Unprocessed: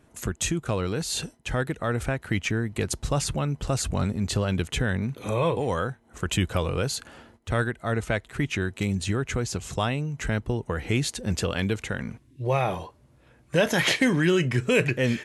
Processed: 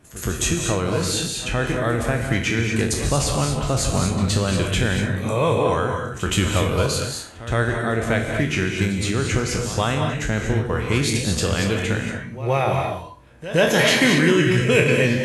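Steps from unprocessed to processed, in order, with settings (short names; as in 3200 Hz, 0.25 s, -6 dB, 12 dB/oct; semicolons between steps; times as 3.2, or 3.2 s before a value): spectral trails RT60 0.37 s; reverse echo 0.119 s -15 dB; non-linear reverb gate 0.26 s rising, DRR 3 dB; gain +3 dB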